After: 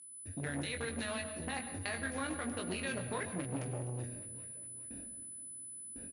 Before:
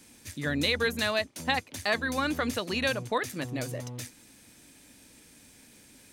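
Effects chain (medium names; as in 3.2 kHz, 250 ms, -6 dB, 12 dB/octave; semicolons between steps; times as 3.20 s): local Wiener filter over 41 samples; gate with hold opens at -50 dBFS; peaking EQ 2 kHz +5.5 dB 1.8 oct; level rider gain up to 12 dB; peak limiter -14 dBFS, peak gain reduction 12.5 dB; compression 5:1, threshold -35 dBFS, peak gain reduction 14 dB; whistle 10 kHz -42 dBFS; distance through air 57 m; doubling 22 ms -4.5 dB; feedback delay 410 ms, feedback 49%, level -19 dB; on a send at -10 dB: reverberation RT60 0.95 s, pre-delay 103 ms; on the sum: transformer saturation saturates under 740 Hz; trim -2 dB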